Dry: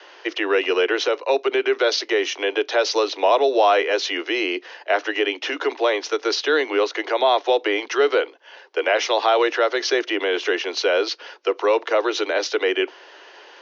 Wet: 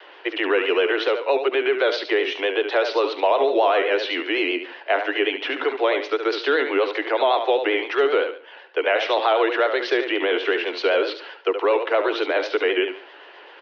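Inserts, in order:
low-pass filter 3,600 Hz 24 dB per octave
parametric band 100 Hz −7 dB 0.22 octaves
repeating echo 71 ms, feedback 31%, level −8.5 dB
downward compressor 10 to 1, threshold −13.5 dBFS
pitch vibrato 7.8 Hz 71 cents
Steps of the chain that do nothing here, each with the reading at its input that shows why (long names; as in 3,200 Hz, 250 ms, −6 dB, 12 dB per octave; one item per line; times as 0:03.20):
parametric band 100 Hz: nothing at its input below 250 Hz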